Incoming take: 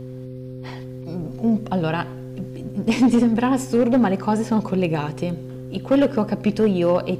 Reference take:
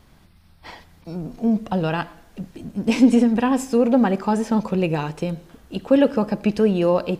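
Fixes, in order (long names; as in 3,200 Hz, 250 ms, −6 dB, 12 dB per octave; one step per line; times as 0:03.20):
clipped peaks rebuilt −10.5 dBFS
hum removal 128.1 Hz, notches 4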